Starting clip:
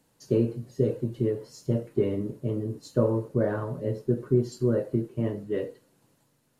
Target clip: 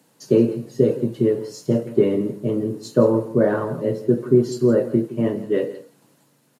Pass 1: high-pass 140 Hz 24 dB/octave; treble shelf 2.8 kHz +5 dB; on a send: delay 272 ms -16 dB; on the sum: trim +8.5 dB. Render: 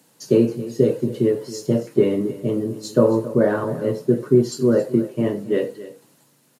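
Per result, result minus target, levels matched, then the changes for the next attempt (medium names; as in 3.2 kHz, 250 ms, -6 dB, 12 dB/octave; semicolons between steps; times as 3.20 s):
echo 104 ms late; 4 kHz band +3.5 dB
change: delay 168 ms -16 dB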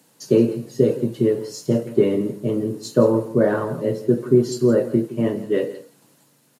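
4 kHz band +3.5 dB
remove: treble shelf 2.8 kHz +5 dB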